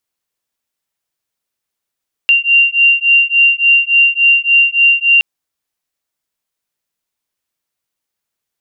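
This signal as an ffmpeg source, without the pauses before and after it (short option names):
-f lavfi -i "aevalsrc='0.299*(sin(2*PI*2770*t)+sin(2*PI*2773.5*t))':d=2.92:s=44100"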